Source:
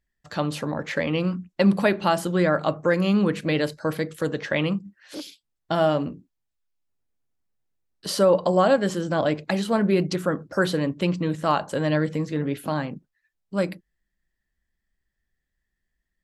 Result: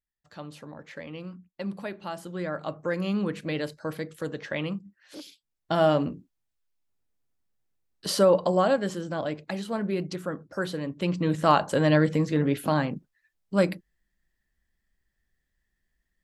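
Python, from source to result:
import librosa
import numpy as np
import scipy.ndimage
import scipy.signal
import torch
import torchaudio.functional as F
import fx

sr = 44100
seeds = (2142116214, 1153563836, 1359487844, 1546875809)

y = fx.gain(x, sr, db=fx.line((2.01, -15.0), (3.0, -7.0), (5.19, -7.0), (5.91, 0.0), (8.07, 0.0), (9.25, -8.0), (10.84, -8.0), (11.38, 2.0)))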